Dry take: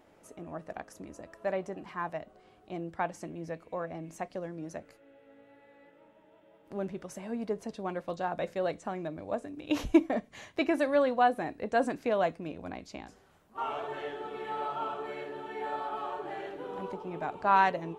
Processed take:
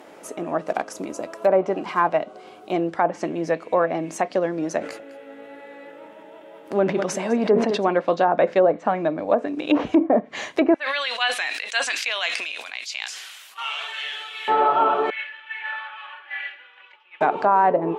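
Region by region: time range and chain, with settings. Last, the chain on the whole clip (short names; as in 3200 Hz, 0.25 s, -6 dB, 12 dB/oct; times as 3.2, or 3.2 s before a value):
0.61–2.74 block floating point 7-bit + notch 1800 Hz, Q 7.4
4.79–7.89 echo 0.204 s -14 dB + sustainer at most 55 dB/s
8.67–9.31 high shelf 2900 Hz -9.5 dB + notch 380 Hz, Q 5.5
10.74–14.48 resonant high-pass 2800 Hz, resonance Q 1.5 + sustainer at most 32 dB/s
15.1–17.21 Butterworth band-pass 2300 Hz, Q 1.7 + comb 3.5 ms, depth 53% + three-band expander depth 100%
whole clip: HPF 270 Hz 12 dB/oct; treble ducked by the level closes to 910 Hz, closed at -27 dBFS; maximiser +24 dB; gain -7 dB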